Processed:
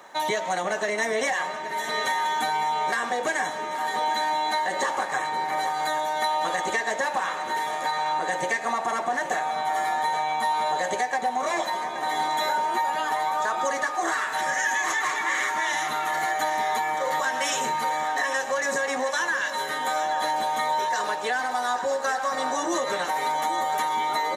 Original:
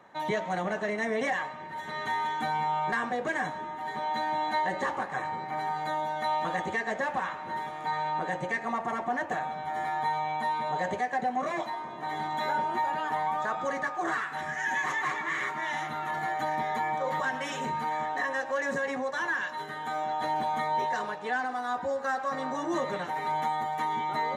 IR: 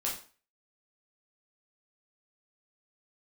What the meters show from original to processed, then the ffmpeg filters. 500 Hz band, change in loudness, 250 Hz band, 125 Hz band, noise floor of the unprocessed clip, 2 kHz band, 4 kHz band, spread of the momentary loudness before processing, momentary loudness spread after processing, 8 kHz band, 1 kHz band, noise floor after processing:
+4.5 dB, +5.0 dB, -0.5 dB, -5.5 dB, -39 dBFS, +5.5 dB, +10.5 dB, 4 LU, 2 LU, +16.0 dB, +5.0 dB, -32 dBFS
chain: -af "bass=f=250:g=-14,treble=f=4000:g=12,acompressor=threshold=0.0282:ratio=6,aecho=1:1:826|1652|2478|3304|4130|4956|5782:0.251|0.148|0.0874|0.0516|0.0304|0.018|0.0106,volume=2.66"

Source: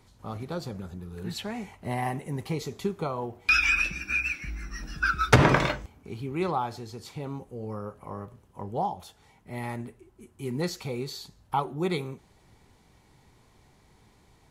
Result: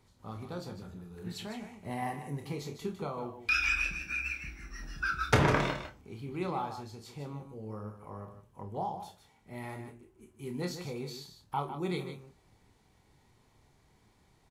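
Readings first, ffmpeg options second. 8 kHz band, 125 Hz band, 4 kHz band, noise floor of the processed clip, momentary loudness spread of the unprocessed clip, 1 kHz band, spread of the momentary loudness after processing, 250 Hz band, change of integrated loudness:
-6.0 dB, -6.5 dB, -6.0 dB, -67 dBFS, 19 LU, -6.0 dB, 18 LU, -6.0 dB, -6.0 dB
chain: -filter_complex "[0:a]asplit=2[s0][s1];[s1]adelay=28,volume=0.447[s2];[s0][s2]amix=inputs=2:normalize=0,aecho=1:1:49|153:0.237|0.335,volume=0.422"

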